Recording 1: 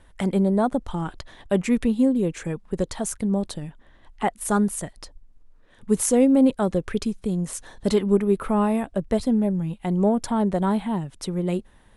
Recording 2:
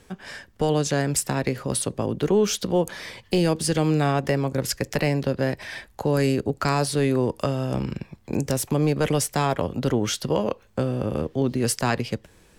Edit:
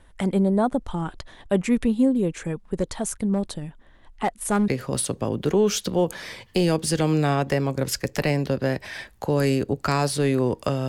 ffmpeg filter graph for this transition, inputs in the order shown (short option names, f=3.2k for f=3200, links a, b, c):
-filter_complex "[0:a]asettb=1/sr,asplit=3[a][b][c];[a]atrim=end=2.784[d];[b]atrim=start=2.78:end=4.68,asetpts=PTS-STARTPTS,afade=t=in:d=0.004:c=qsin,afade=t=out:st=1.896:d=0.004:c=qsin,volume=16dB,asoftclip=hard,volume=-16dB[e];[c]atrim=start=4.676[f];[d][e]acrossfade=d=0.004:c1=hsin:c2=qsin[g];[g][f]acrossfade=d=0.004:c1=qsin:c2=hsin,apad=whole_dur=10.88,atrim=end=10.88,atrim=end=4.682[h];[1:a]atrim=start=1.448:end=7.65[i];[h][i]acrossfade=d=0.004:c1=hsin:c2=hsin"